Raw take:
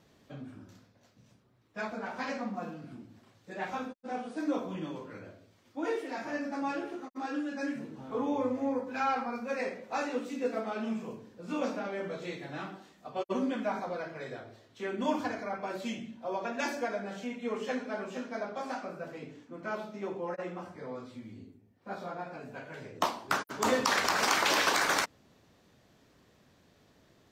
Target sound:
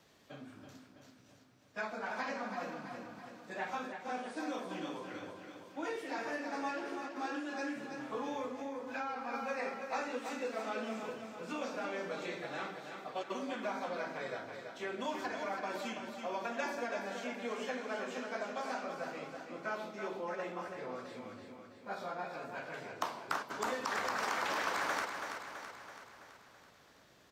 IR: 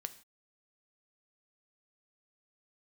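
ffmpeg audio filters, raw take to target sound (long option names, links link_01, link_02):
-filter_complex "[0:a]acrossover=split=210|1900[link_01][link_02][link_03];[link_01]acompressor=threshold=-51dB:ratio=4[link_04];[link_02]acompressor=threshold=-35dB:ratio=4[link_05];[link_03]acompressor=threshold=-50dB:ratio=4[link_06];[link_04][link_05][link_06]amix=inputs=3:normalize=0,aecho=1:1:330|660|990|1320|1650|1980|2310:0.447|0.25|0.14|0.0784|0.0439|0.0246|0.0138,asettb=1/sr,asplit=3[link_07][link_08][link_09];[link_07]atrim=end=8.454[link_10];[link_08]atrim=start=8.45:end=9.34,asetpts=PTS-STARTPTS,afade=type=in:duration=0.004:curve=qsin,afade=type=out:start_time=0.886:duration=0.004:curve=qsin,acompressor=threshold=-35dB:ratio=6[link_11];[link_09]atrim=start=9.336[link_12];[link_10][link_11]acrossfade=duration=0.004:curve1=hsin:curve2=qsin[link_13];[link_13][link_12]acrossfade=duration=0.004:curve1=qsin:curve2=hsin,lowshelf=frequency=440:gain=-9.5,volume=2dB"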